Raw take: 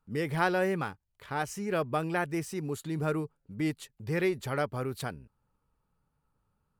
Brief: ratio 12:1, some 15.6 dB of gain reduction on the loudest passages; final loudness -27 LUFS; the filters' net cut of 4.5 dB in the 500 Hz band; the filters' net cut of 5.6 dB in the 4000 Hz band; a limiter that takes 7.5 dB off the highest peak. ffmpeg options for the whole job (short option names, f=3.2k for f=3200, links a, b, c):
-af "equalizer=f=500:t=o:g=-6,equalizer=f=4k:t=o:g=-7.5,acompressor=threshold=-41dB:ratio=12,volume=21.5dB,alimiter=limit=-17dB:level=0:latency=1"